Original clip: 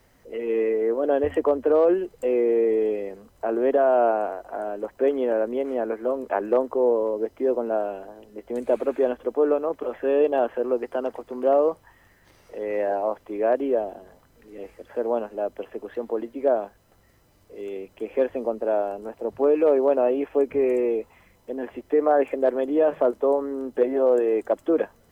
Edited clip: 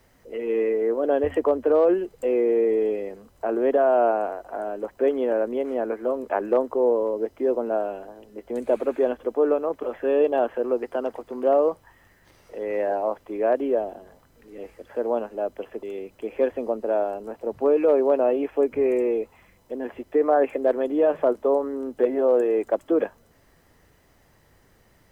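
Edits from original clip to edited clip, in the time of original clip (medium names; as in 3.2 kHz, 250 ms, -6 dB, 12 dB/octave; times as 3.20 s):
15.83–17.61 s: delete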